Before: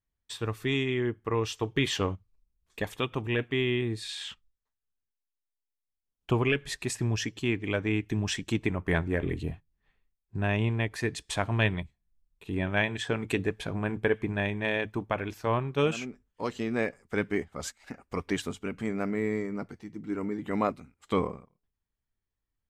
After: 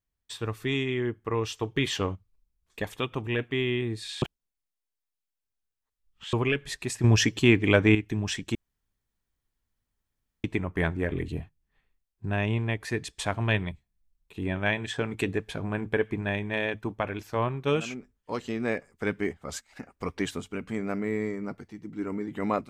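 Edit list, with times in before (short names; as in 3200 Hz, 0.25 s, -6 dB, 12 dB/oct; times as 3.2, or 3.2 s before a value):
4.22–6.33 reverse
7.04–7.95 gain +9 dB
8.55 insert room tone 1.89 s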